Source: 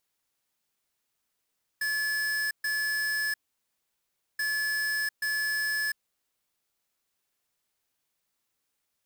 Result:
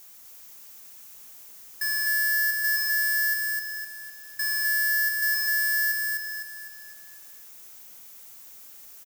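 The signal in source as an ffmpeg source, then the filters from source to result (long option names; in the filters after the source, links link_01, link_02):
-f lavfi -i "aevalsrc='0.0355*(2*lt(mod(1720*t,1),0.5)-1)*clip(min(mod(mod(t,2.58),0.83),0.7-mod(mod(t,2.58),0.83))/0.005,0,1)*lt(mod(t,2.58),1.66)':duration=5.16:sample_rate=44100"
-filter_complex "[0:a]aeval=exprs='val(0)+0.5*0.00251*sgn(val(0))':channel_layout=same,aexciter=amount=1.4:drive=8.3:freq=5600,asplit=2[link_01][link_02];[link_02]aecho=0:1:254|508|762|1016|1270|1524:0.708|0.333|0.156|0.0735|0.0345|0.0162[link_03];[link_01][link_03]amix=inputs=2:normalize=0"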